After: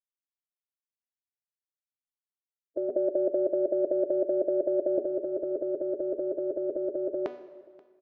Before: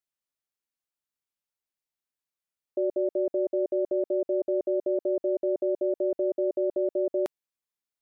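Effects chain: expander on every frequency bin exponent 2; 2.89–4.98 s: tilt EQ +4.5 dB/octave; band-stop 410 Hz, Q 12; de-hum 246.7 Hz, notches 29; compressor with a negative ratio -35 dBFS, ratio -1; distance through air 230 m; delay 532 ms -23.5 dB; plate-style reverb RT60 1.9 s, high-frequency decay 0.8×, DRR 13.5 dB; trim +9 dB

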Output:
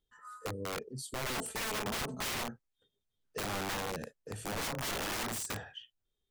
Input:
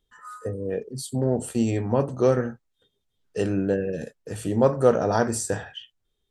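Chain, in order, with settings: 1.26–2.44 s: comb 4.6 ms, depth 92%; integer overflow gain 22.5 dB; trim -8.5 dB

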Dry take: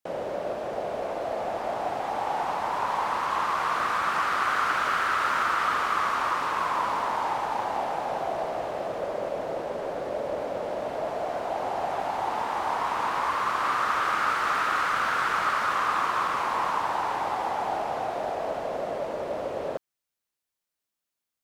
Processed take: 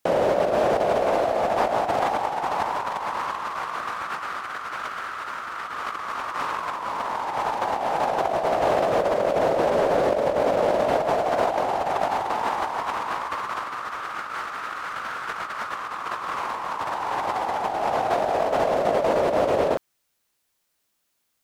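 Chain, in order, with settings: compressor with a negative ratio -32 dBFS, ratio -0.5; trim +8 dB

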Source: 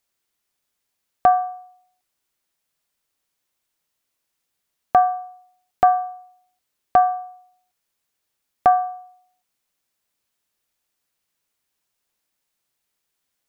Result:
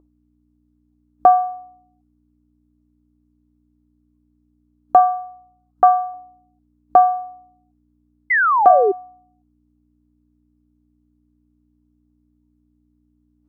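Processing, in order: hum 60 Hz, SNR 18 dB; 4.99–6.14 s: FFT filter 160 Hz 0 dB, 320 Hz -7 dB, 1.4 kHz +4 dB, 1.9 kHz -2 dB; spectral noise reduction 10 dB; high-order bell 580 Hz +15 dB 2.7 oct; 8.30–8.92 s: painted sound fall 370–2100 Hz -4 dBFS; trim -11.5 dB

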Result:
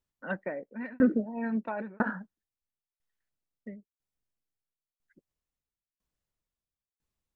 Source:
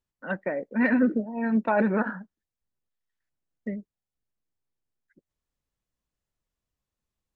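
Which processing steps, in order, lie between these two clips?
tremolo saw down 1 Hz, depth 100%

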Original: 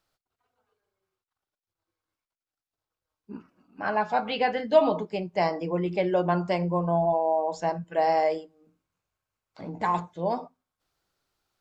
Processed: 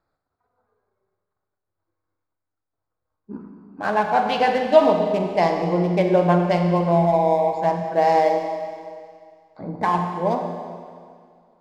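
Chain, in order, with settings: local Wiener filter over 15 samples; Schroeder reverb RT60 2.1 s, combs from 31 ms, DRR 3.5 dB; trim +5.5 dB

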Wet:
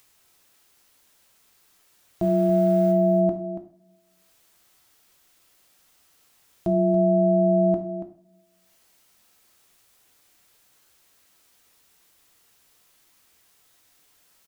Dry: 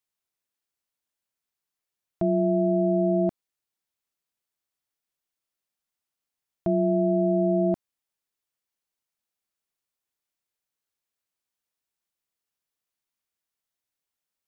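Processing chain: 2.22–2.92 s: send-on-delta sampling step -42.5 dBFS; upward compressor, threshold -43 dBFS; delay 282 ms -11 dB; two-slope reverb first 0.47 s, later 1.9 s, from -25 dB, DRR 4.5 dB

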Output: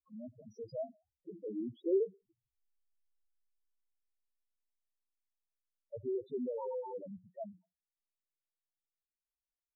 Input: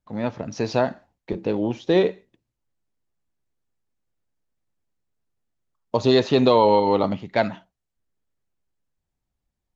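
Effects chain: Doppler pass-by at 3.11 s, 6 m/s, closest 3.6 m; loudest bins only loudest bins 2; trim -2 dB

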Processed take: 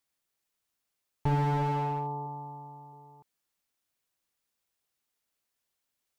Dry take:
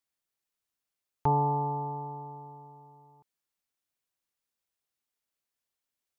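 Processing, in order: 2.26–2.93 s: band-stop 420 Hz, Q 12; slew-rate limiter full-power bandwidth 15 Hz; trim +4.5 dB

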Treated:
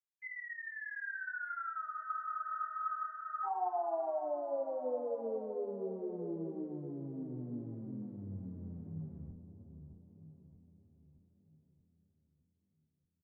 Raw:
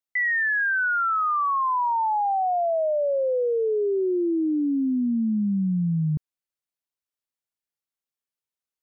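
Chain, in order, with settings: octave divider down 1 oct, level -2 dB; Doppler pass-by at 2.43 s, 9 m/s, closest 1.8 m; compression 12:1, threshold -34 dBFS, peak gain reduction 12 dB; time stretch by phase-locked vocoder 1.5×; delay 487 ms -21.5 dB; flange 0.47 Hz, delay 8.9 ms, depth 8 ms, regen +85%; on a send: feedback echo behind a low-pass 623 ms, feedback 52%, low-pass 1.1 kHz, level -8 dB; on the sum: spectral freeze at 1.86 s, 1.59 s; detune thickener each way 27 cents; trim +7.5 dB

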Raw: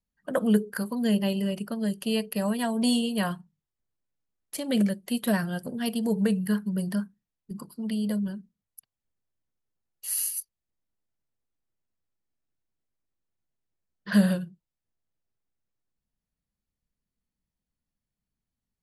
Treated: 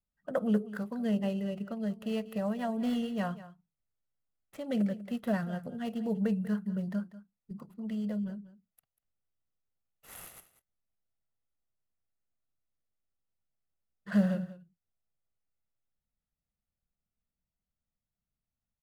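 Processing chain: median filter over 9 samples; treble shelf 2.8 kHz -7.5 dB; comb 1.5 ms, depth 32%; on a send: delay 192 ms -16 dB; on the sum: trim -5 dB

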